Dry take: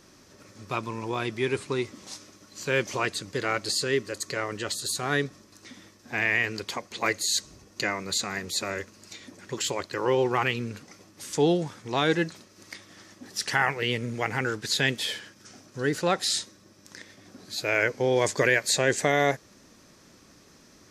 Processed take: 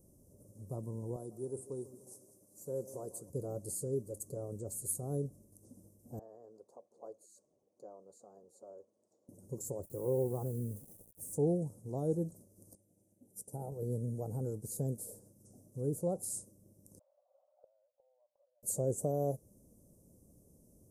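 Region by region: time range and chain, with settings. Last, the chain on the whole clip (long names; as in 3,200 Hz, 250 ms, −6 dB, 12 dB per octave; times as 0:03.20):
0:01.16–0:03.30: high-pass filter 410 Hz 6 dB per octave + echo with a time of its own for lows and highs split 1,200 Hz, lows 147 ms, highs 195 ms, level −14.5 dB
0:06.19–0:09.29: high-pass filter 680 Hz + head-to-tape spacing loss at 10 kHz 28 dB
0:09.83–0:11.35: high-shelf EQ 8,200 Hz +2.5 dB + bit-depth reduction 8 bits, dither none
0:12.75–0:13.72: Butterworth band-reject 2,400 Hz, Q 0.57 + notch comb filter 1,100 Hz + expander for the loud parts, over −46 dBFS
0:16.99–0:18.63: downward compressor, threshold −27 dBFS + linear-phase brick-wall band-pass 520–1,600 Hz + gate with flip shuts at −39 dBFS, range −24 dB
whole clip: elliptic band-stop filter 530–9,500 Hz, stop band 80 dB; parametric band 350 Hz −10 dB 1.7 octaves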